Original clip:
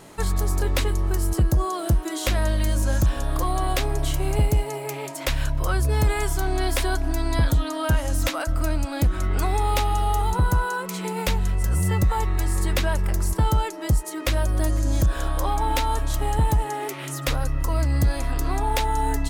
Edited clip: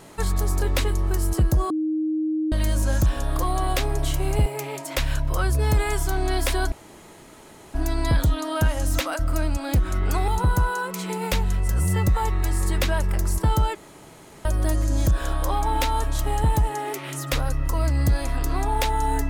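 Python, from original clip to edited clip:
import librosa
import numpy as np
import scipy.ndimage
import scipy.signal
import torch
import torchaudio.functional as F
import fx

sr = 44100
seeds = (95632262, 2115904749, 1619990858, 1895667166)

y = fx.edit(x, sr, fx.bleep(start_s=1.7, length_s=0.82, hz=312.0, db=-21.0),
    fx.cut(start_s=4.46, length_s=0.3),
    fx.insert_room_tone(at_s=7.02, length_s=1.02),
    fx.cut(start_s=9.56, length_s=0.67),
    fx.room_tone_fill(start_s=13.7, length_s=0.7), tone=tone)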